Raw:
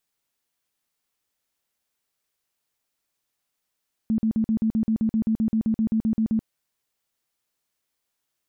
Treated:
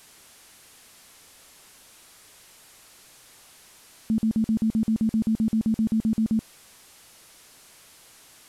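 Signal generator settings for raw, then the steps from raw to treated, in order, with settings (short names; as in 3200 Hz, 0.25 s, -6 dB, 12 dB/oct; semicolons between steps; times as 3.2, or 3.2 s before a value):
tone bursts 221 Hz, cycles 18, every 0.13 s, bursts 18, -18.5 dBFS
delta modulation 64 kbps, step -45 dBFS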